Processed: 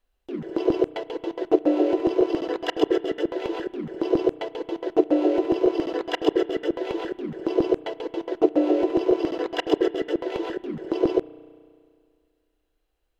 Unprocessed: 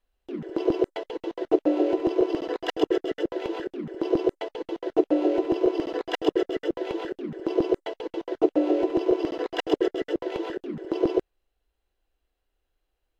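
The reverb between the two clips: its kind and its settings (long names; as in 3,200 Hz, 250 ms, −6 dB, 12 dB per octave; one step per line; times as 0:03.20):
spring reverb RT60 2.2 s, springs 33 ms, chirp 70 ms, DRR 17.5 dB
level +2 dB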